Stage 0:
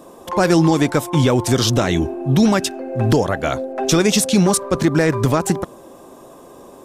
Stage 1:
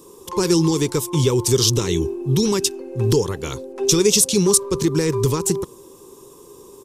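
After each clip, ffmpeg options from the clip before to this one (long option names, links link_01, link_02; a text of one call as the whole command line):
ffmpeg -i in.wav -af "firequalizer=gain_entry='entry(130,0);entry(260,-8);entry(410,6);entry(650,-23);entry(950,-2);entry(1500,-12);entry(2700,-2);entry(5600,6)':delay=0.05:min_phase=1,volume=-1.5dB" out.wav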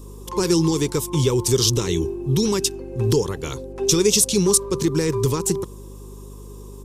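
ffmpeg -i in.wav -af "aeval=exprs='val(0)+0.0158*(sin(2*PI*50*n/s)+sin(2*PI*2*50*n/s)/2+sin(2*PI*3*50*n/s)/3+sin(2*PI*4*50*n/s)/4+sin(2*PI*5*50*n/s)/5)':channel_layout=same,volume=-1.5dB" out.wav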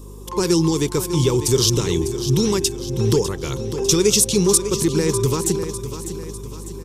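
ffmpeg -i in.wav -af "aecho=1:1:600|1200|1800|2400|3000:0.282|0.141|0.0705|0.0352|0.0176,volume=1dB" out.wav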